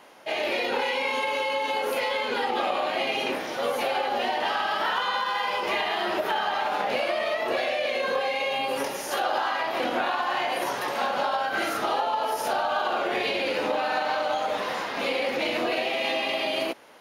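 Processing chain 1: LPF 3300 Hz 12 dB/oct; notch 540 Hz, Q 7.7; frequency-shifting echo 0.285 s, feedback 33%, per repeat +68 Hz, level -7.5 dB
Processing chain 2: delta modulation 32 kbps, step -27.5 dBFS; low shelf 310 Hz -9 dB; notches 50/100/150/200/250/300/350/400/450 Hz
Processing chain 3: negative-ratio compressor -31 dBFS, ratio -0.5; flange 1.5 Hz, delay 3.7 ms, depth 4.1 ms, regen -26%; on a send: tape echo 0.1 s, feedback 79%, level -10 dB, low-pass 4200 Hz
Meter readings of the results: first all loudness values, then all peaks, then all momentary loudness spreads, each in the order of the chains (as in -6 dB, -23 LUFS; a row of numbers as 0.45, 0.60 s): -27.0, -27.0, -34.5 LUFS; -13.0, -13.0, -18.0 dBFS; 3, 2, 5 LU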